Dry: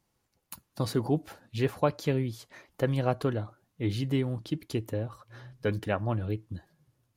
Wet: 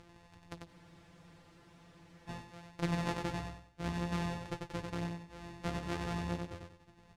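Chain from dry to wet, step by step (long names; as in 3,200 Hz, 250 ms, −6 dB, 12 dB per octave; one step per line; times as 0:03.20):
samples sorted by size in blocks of 256 samples
flanger 0.44 Hz, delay 8 ms, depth 8 ms, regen +42%
upward compression, threshold −34 dBFS
high-frequency loss of the air 59 metres
repeating echo 94 ms, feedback 33%, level −4 dB
frozen spectrum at 0:00.70, 1.58 s
level −4.5 dB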